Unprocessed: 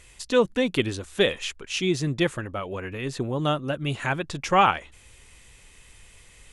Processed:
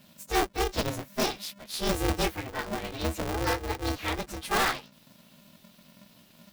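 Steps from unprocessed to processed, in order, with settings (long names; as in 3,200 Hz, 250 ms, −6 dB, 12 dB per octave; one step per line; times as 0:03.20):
partials spread apart or drawn together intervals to 117%
0:01.86–0:03.18: comb filter 7.1 ms, depth 73%
in parallel at −4 dB: wrap-around overflow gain 17 dB
on the sum: ring modulator with a square carrier 200 Hz
level −5.5 dB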